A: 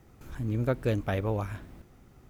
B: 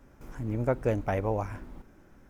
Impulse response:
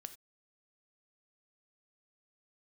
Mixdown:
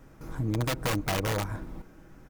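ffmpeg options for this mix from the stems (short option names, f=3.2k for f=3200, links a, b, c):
-filter_complex "[0:a]volume=-3dB[a];[1:a]aeval=exprs='(mod(14.1*val(0)+1,2)-1)/14.1':c=same,volume=2.5dB[b];[a][b]amix=inputs=2:normalize=0,aecho=1:1:6.3:0.34,acompressor=threshold=-28dB:ratio=2"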